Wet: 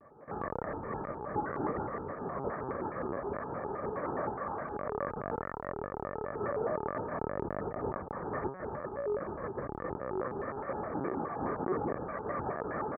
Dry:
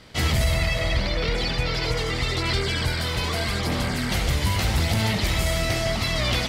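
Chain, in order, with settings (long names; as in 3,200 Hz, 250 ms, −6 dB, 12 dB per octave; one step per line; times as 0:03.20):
loose part that buzzes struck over −28 dBFS, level −23 dBFS
parametric band 960 Hz +5 dB 0.77 octaves
comb filter 1 ms, depth 84%
brickwall limiter −16.5 dBFS, peak gain reduction 9.5 dB
chorus effect 0.9 Hz, delay 20 ms, depth 5.2 ms
high-frequency loss of the air 330 metres
ambience of single reflections 38 ms −5.5 dB, 60 ms −7 dB
linear-prediction vocoder at 8 kHz pitch kept
band-pass filter 390–2,900 Hz
wrong playback speed 15 ips tape played at 7.5 ips
pitch modulation by a square or saw wave square 4.8 Hz, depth 250 cents
level −1.5 dB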